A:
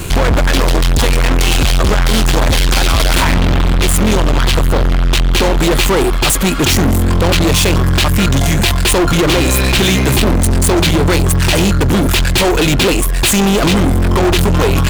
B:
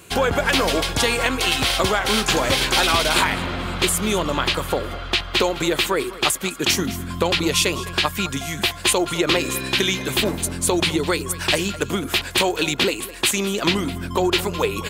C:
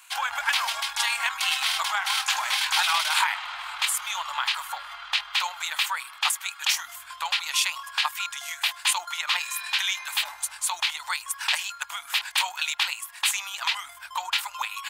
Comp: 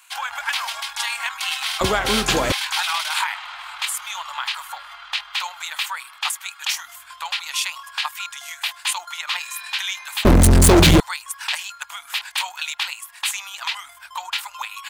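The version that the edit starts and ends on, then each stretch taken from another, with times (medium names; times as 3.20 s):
C
1.81–2.52 s: from B
10.25–11.00 s: from A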